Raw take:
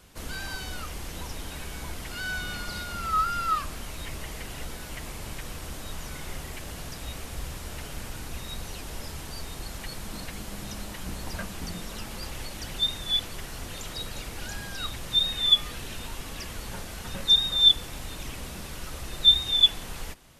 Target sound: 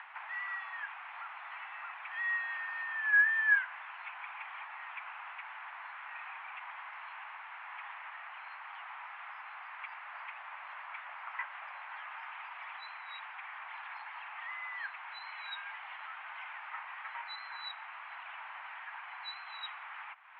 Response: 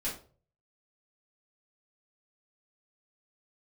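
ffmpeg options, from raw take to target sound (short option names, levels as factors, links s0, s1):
-af "acompressor=mode=upward:threshold=0.0251:ratio=2.5,highpass=f=460:t=q:w=0.5412,highpass=f=460:t=q:w=1.307,lowpass=f=2100:t=q:w=0.5176,lowpass=f=2100:t=q:w=0.7071,lowpass=f=2100:t=q:w=1.932,afreqshift=390"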